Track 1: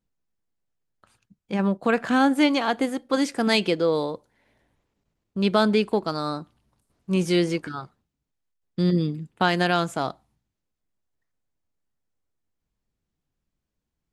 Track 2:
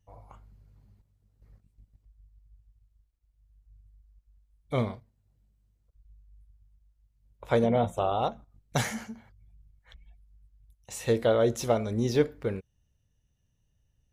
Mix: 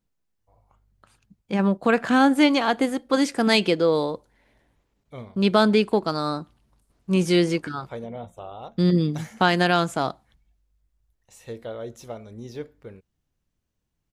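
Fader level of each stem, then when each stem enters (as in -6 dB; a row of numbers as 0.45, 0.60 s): +2.0, -11.0 dB; 0.00, 0.40 s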